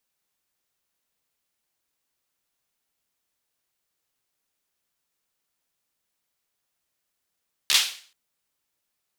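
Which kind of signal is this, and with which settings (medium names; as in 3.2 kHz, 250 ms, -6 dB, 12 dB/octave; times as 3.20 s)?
hand clap length 0.43 s, apart 14 ms, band 3.5 kHz, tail 0.45 s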